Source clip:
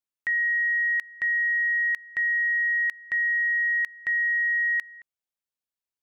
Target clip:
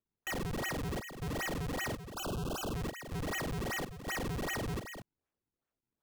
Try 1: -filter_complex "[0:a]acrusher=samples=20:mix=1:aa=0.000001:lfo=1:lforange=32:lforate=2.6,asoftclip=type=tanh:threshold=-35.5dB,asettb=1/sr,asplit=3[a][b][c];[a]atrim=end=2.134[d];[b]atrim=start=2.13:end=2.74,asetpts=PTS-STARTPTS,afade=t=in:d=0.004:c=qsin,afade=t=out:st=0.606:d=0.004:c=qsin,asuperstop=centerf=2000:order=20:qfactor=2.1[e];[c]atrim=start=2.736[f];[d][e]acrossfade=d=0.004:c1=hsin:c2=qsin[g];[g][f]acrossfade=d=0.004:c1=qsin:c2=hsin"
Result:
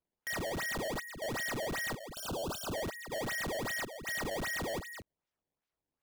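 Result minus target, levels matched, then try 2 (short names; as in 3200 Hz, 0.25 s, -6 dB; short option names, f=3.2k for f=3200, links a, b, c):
decimation with a swept rate: distortion -14 dB
-filter_complex "[0:a]acrusher=samples=43:mix=1:aa=0.000001:lfo=1:lforange=68.8:lforate=2.6,asoftclip=type=tanh:threshold=-35.5dB,asettb=1/sr,asplit=3[a][b][c];[a]atrim=end=2.134[d];[b]atrim=start=2.13:end=2.74,asetpts=PTS-STARTPTS,afade=t=in:d=0.004:c=qsin,afade=t=out:st=0.606:d=0.004:c=qsin,asuperstop=centerf=2000:order=20:qfactor=2.1[e];[c]atrim=start=2.736[f];[d][e]acrossfade=d=0.004:c1=hsin:c2=qsin[g];[g][f]acrossfade=d=0.004:c1=qsin:c2=hsin"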